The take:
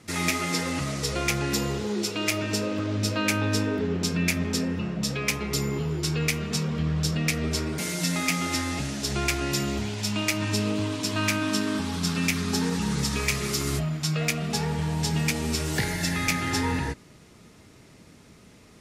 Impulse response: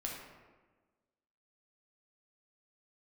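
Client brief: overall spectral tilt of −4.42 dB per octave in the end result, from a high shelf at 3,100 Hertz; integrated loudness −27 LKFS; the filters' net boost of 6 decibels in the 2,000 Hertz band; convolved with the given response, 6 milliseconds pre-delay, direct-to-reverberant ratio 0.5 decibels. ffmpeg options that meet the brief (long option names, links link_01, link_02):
-filter_complex "[0:a]equalizer=frequency=2000:width_type=o:gain=8.5,highshelf=frequency=3100:gain=-3.5,asplit=2[link_01][link_02];[1:a]atrim=start_sample=2205,adelay=6[link_03];[link_02][link_03]afir=irnorm=-1:irlink=0,volume=-1dB[link_04];[link_01][link_04]amix=inputs=2:normalize=0,volume=-4.5dB"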